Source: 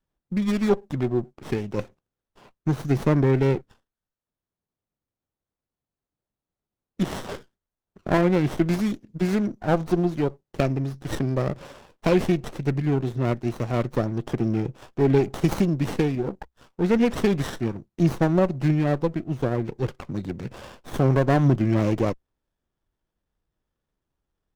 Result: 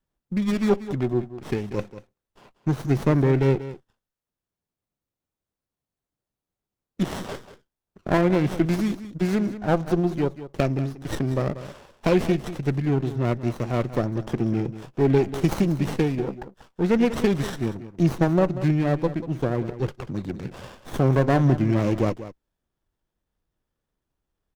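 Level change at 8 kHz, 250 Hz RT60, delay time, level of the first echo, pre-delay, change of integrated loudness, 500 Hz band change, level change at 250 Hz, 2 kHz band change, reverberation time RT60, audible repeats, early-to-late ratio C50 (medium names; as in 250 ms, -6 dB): 0.0 dB, no reverb, 188 ms, -13.5 dB, no reverb, 0.0 dB, 0.0 dB, 0.0 dB, 0.0 dB, no reverb, 1, no reverb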